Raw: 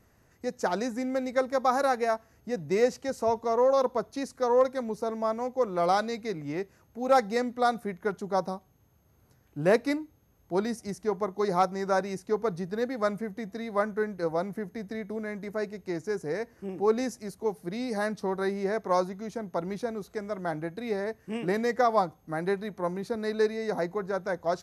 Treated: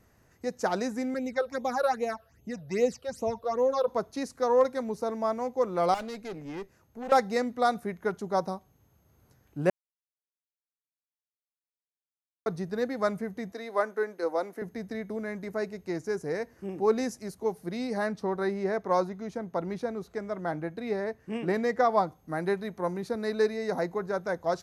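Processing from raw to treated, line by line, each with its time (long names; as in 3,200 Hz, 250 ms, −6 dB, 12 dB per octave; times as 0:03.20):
0:01.14–0:03.88: all-pass phaser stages 8, 2.5 Hz, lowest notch 250–1,600 Hz
0:05.94–0:07.12: tube saturation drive 33 dB, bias 0.6
0:09.70–0:12.46: silence
0:13.52–0:14.62: high-pass filter 290 Hz 24 dB per octave
0:17.87–0:22.07: high-shelf EQ 5,400 Hz −8 dB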